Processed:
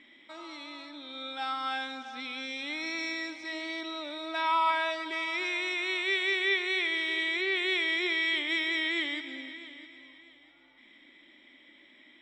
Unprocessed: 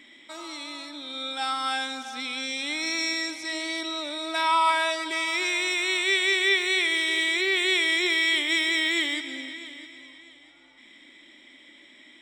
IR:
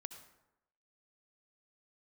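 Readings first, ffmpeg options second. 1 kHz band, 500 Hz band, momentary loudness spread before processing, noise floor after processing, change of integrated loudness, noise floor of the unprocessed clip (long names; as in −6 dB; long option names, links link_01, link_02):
−4.5 dB, −4.5 dB, 15 LU, −59 dBFS, −5.5 dB, −53 dBFS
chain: -af "lowpass=3600,volume=-4.5dB"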